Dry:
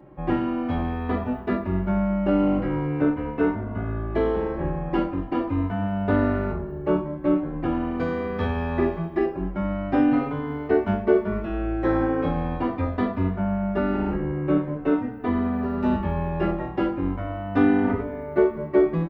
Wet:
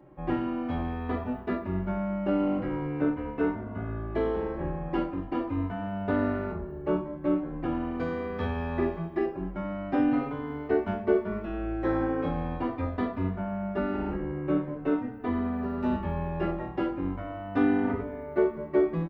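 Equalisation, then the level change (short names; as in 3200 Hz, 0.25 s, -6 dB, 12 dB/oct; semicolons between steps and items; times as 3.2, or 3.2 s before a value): notches 50/100/150/200 Hz; -5.0 dB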